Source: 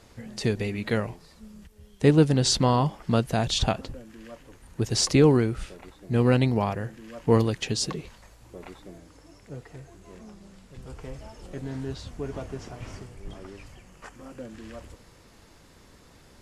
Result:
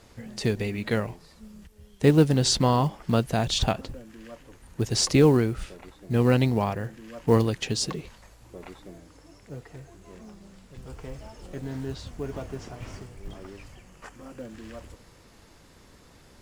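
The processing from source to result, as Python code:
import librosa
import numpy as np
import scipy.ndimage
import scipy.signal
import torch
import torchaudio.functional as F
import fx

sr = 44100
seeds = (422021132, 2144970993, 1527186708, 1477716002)

y = fx.quant_float(x, sr, bits=4)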